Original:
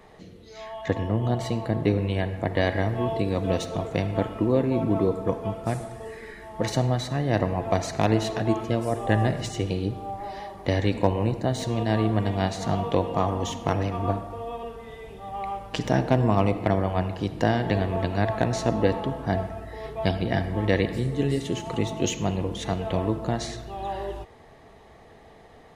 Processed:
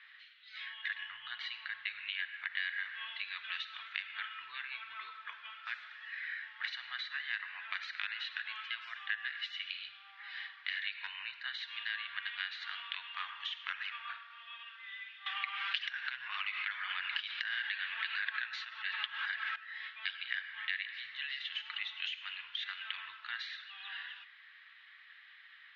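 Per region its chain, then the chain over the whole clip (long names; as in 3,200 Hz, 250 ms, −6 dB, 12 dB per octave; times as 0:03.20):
0:04.97–0:07.80: high-pass filter 220 Hz + low-shelf EQ 450 Hz +7.5 dB
0:15.26–0:19.56: high-shelf EQ 7,600 Hz +6.5 dB + flanger 1.7 Hz, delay 1.7 ms, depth 6.9 ms, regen +35% + envelope flattener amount 100%
whole clip: elliptic high-pass filter 1,500 Hz, stop band 60 dB; downward compressor 4 to 1, threshold −39 dBFS; Butterworth low-pass 3,700 Hz 36 dB per octave; level +5 dB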